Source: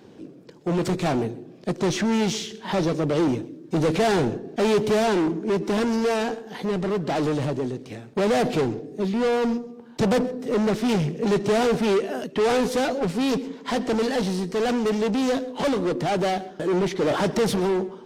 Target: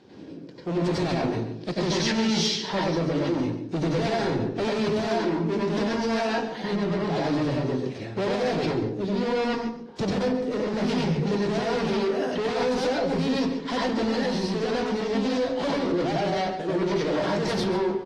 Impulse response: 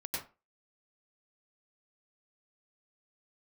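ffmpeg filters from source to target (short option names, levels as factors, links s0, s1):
-filter_complex "[1:a]atrim=start_sample=2205[s0];[0:a][s0]afir=irnorm=-1:irlink=0,alimiter=limit=0.141:level=0:latency=1:release=74,asetnsamples=n=441:p=0,asendcmd='1.33 equalizer g 15;2.67 equalizer g 7.5',equalizer=f=4700:t=o:w=1.3:g=8,asplit=2[s1][s2];[s2]adelay=139.9,volume=0.251,highshelf=f=4000:g=-3.15[s3];[s1][s3]amix=inputs=2:normalize=0,asoftclip=type=tanh:threshold=0.266,aemphasis=mode=reproduction:type=50fm,bandreject=f=106.3:t=h:w=4,bandreject=f=212.6:t=h:w=4,bandreject=f=318.9:t=h:w=4,bandreject=f=425.2:t=h:w=4" -ar 32000 -c:a aac -b:a 48k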